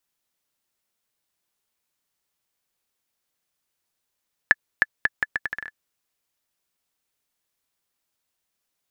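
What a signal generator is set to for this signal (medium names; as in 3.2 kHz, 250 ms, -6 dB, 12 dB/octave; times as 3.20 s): bouncing ball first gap 0.31 s, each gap 0.75, 1.73 kHz, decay 34 ms -1.5 dBFS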